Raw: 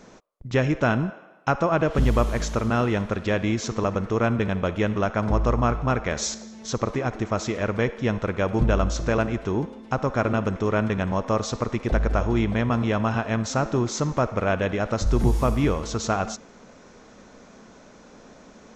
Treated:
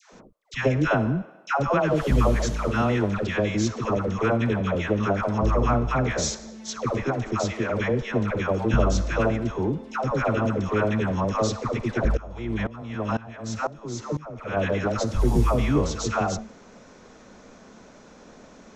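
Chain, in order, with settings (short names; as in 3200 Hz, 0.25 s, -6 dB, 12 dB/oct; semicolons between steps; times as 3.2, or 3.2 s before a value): dispersion lows, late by 0.13 s, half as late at 760 Hz; 12.17–14.57 dB-ramp tremolo swelling 2 Hz, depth 20 dB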